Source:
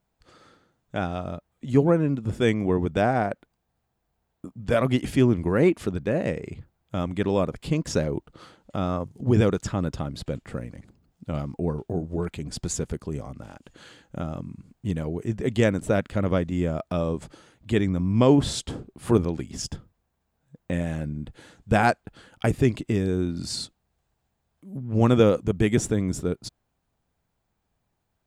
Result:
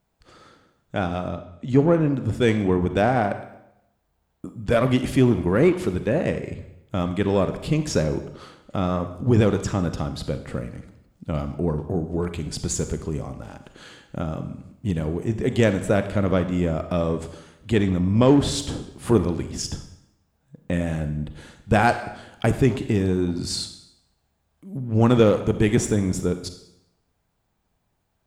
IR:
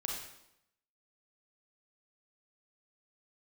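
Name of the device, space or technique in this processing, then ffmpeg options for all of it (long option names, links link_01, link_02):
saturated reverb return: -filter_complex "[0:a]asplit=2[link_01][link_02];[1:a]atrim=start_sample=2205[link_03];[link_02][link_03]afir=irnorm=-1:irlink=0,asoftclip=type=tanh:threshold=-20dB,volume=-4.5dB[link_04];[link_01][link_04]amix=inputs=2:normalize=0,asettb=1/sr,asplit=3[link_05][link_06][link_07];[link_05]atrim=end=1.284[link_08];[link_06]atrim=start=1.28:end=2.13,asetpts=PTS-STARTPTS,afade=type=in:duration=0.004:curve=qsin,afade=type=out:start_time=0.846:duration=0.004:curve=qsin,lowpass=7000[link_09];[link_07]atrim=start=2.126[link_10];[link_08][link_09]acrossfade=duration=0.004:curve1=hsin:curve2=qsin[link_11];[link_11][link_10]acrossfade=duration=0.004:curve1=qsin:curve2=hsin"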